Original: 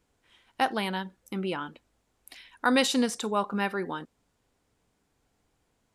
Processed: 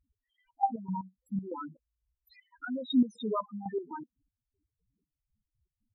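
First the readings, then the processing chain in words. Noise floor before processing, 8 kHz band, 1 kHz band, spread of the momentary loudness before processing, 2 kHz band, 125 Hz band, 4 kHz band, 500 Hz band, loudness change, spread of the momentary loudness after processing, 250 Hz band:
−75 dBFS, below −30 dB, −4.5 dB, 13 LU, −18.0 dB, −3.0 dB, −13.0 dB, −7.5 dB, −5.0 dB, 17 LU, −2.0 dB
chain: spectral peaks only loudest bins 2
gate pattern "x..x.x.x..x.x" 119 BPM −12 dB
level +3.5 dB

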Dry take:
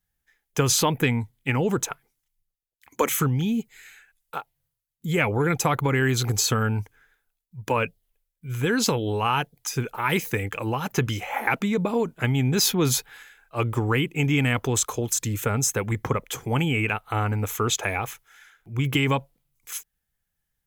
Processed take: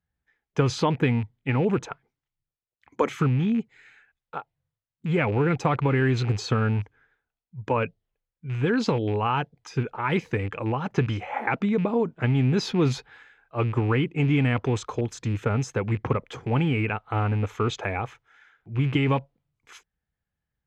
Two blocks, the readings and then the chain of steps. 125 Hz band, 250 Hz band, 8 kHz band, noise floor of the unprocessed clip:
+1.0 dB, +1.0 dB, −17.5 dB, −81 dBFS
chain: loose part that buzzes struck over −28 dBFS, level −27 dBFS
dynamic equaliser 4,600 Hz, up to +4 dB, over −42 dBFS, Q 2.1
high-pass filter 46 Hz
head-to-tape spacing loss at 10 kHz 30 dB
level +1.5 dB

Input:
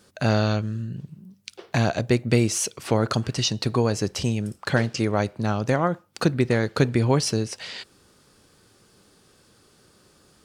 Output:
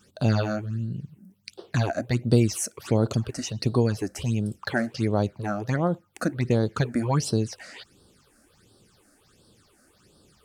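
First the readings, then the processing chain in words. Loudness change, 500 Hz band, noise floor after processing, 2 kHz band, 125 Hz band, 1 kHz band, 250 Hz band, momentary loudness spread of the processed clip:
−2.5 dB, −3.0 dB, −62 dBFS, −4.5 dB, −1.0 dB, −4.0 dB, −1.5 dB, 11 LU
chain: dynamic equaliser 2,600 Hz, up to −3 dB, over −40 dBFS, Q 0.71
all-pass phaser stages 8, 1.4 Hz, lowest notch 120–2,200 Hz

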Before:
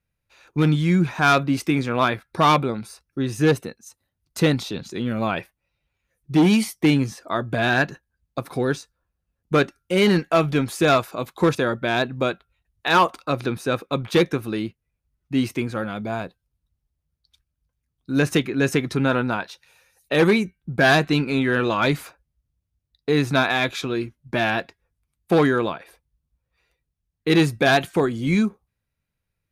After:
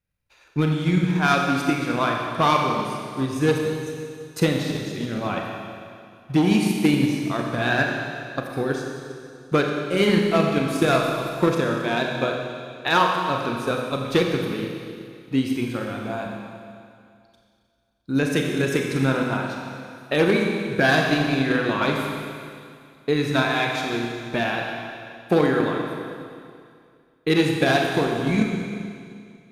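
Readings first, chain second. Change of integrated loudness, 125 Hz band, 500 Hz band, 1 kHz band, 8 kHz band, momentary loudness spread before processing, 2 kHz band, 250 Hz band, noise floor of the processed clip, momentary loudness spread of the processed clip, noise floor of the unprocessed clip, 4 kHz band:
−1.5 dB, −1.5 dB, −0.5 dB, −1.0 dB, −1.0 dB, 11 LU, −1.0 dB, −0.5 dB, −57 dBFS, 15 LU, −80 dBFS, −1.0 dB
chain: four-comb reverb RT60 2.3 s, combs from 30 ms, DRR −0.5 dB
transient designer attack +5 dB, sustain 0 dB
level −5 dB

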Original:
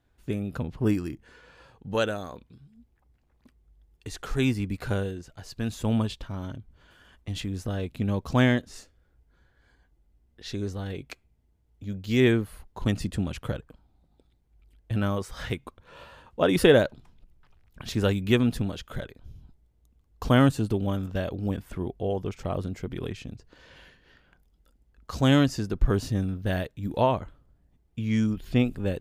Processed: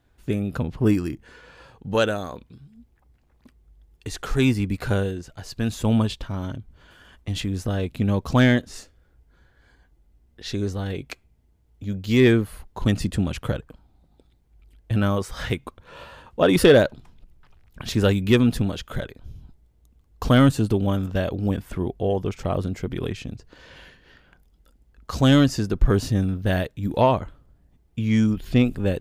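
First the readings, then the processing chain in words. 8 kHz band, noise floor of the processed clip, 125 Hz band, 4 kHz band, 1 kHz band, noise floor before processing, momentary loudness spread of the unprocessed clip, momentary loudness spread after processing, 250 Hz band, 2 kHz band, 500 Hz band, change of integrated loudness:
+5.5 dB, −61 dBFS, +5.0 dB, +4.5 dB, +4.0 dB, −67 dBFS, 19 LU, 19 LU, +5.0 dB, +4.0 dB, +4.5 dB, +4.5 dB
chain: soft clipping −10 dBFS, distortion −19 dB
level +5.5 dB

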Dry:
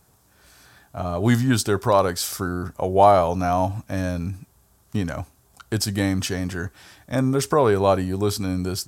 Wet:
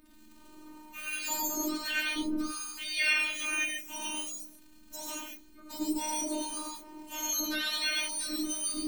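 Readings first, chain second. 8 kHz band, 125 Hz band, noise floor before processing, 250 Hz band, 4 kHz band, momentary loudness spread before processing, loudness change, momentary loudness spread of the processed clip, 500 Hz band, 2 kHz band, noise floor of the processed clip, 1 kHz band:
−0.5 dB, below −40 dB, −60 dBFS, −12.0 dB, −1.0 dB, 14 LU, −9.5 dB, 14 LU, −24.0 dB, +0.5 dB, −55 dBFS, −18.0 dB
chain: frequency axis turned over on the octave scale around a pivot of 1,300 Hz
dynamic equaliser 640 Hz, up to +6 dB, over −44 dBFS, Q 2
surface crackle 63 per second −41 dBFS
downward compressor 1.5 to 1, threshold −44 dBFS, peak gain reduction 11.5 dB
phases set to zero 306 Hz
harmonic and percussive parts rebalanced percussive −15 dB
reverb whose tail is shaped and stops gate 160 ms rising, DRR −2.5 dB

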